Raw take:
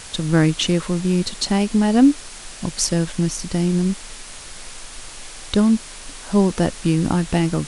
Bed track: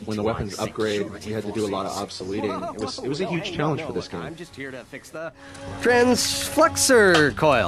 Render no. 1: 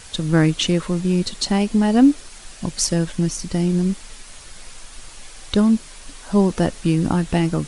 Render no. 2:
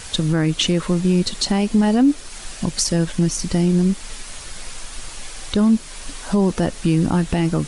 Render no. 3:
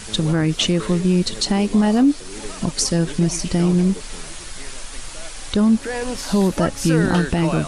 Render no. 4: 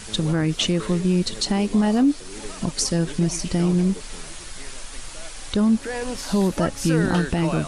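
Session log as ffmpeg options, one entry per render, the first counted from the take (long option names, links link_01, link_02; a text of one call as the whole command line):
ffmpeg -i in.wav -af "afftdn=noise_reduction=6:noise_floor=-38" out.wav
ffmpeg -i in.wav -filter_complex "[0:a]asplit=2[link_01][link_02];[link_02]acompressor=threshold=-26dB:ratio=6,volume=0dB[link_03];[link_01][link_03]amix=inputs=2:normalize=0,alimiter=limit=-8.5dB:level=0:latency=1:release=29" out.wav
ffmpeg -i in.wav -i bed.wav -filter_complex "[1:a]volume=-9dB[link_01];[0:a][link_01]amix=inputs=2:normalize=0" out.wav
ffmpeg -i in.wav -af "volume=-3dB" out.wav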